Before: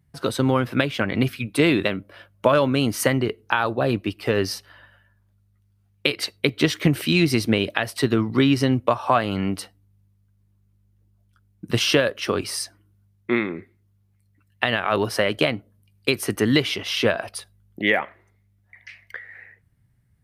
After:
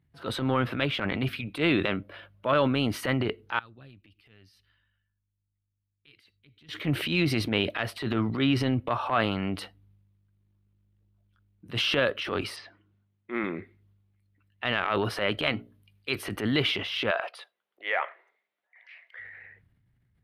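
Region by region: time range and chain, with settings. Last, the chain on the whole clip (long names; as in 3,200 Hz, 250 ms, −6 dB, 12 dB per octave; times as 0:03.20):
0:03.59–0:06.69: guitar amp tone stack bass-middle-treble 6-0-2 + downward compressor 2 to 1, threshold −52 dBFS
0:12.56–0:13.44: high-pass filter 230 Hz 6 dB per octave + treble cut that deepens with the level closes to 1,900 Hz, closed at −23.5 dBFS + high-frequency loss of the air 130 metres
0:15.43–0:16.16: tilt shelving filter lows −3 dB, about 1,100 Hz + mains-hum notches 60/120/180/240/300/360/420 Hz
0:17.11–0:19.19: high-pass filter 490 Hz 24 dB per octave + high-shelf EQ 6,000 Hz −11 dB
whole clip: dynamic equaliser 1,300 Hz, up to +5 dB, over −42 dBFS, Q 5.3; transient designer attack −10 dB, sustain +6 dB; high shelf with overshoot 4,600 Hz −9 dB, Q 1.5; level −5.5 dB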